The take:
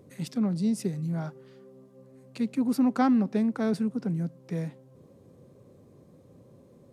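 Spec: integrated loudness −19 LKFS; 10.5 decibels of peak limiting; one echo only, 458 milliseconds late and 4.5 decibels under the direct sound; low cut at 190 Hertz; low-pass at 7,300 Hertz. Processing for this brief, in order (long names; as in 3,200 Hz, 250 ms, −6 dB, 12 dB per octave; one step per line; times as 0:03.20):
high-pass filter 190 Hz
low-pass filter 7,300 Hz
brickwall limiter −23.5 dBFS
single-tap delay 458 ms −4.5 dB
level +14 dB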